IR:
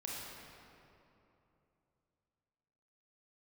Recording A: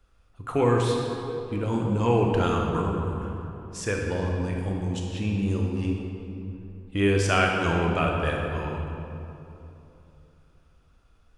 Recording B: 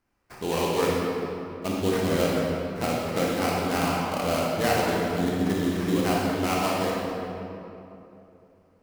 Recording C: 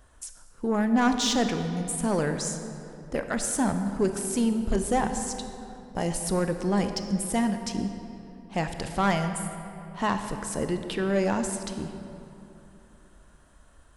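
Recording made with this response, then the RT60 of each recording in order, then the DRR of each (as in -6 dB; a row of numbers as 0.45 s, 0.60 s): B; 3.0 s, 3.0 s, 3.0 s; -0.5 dB, -4.5 dB, 6.5 dB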